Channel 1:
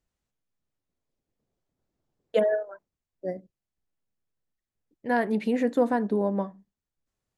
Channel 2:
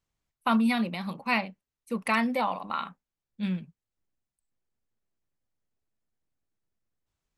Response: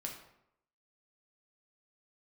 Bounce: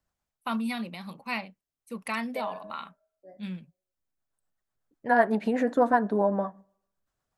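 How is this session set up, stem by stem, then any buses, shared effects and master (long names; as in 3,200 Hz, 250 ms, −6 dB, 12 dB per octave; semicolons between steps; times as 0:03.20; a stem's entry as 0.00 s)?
−0.5 dB, 0.00 s, send −23 dB, flat-topped bell 1,000 Hz +10.5 dB; rotating-speaker cabinet horn 8 Hz; automatic ducking −23 dB, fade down 1.00 s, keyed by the second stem
−6.5 dB, 0.00 s, no send, high-shelf EQ 4,800 Hz +6 dB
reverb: on, RT60 0.80 s, pre-delay 5 ms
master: no processing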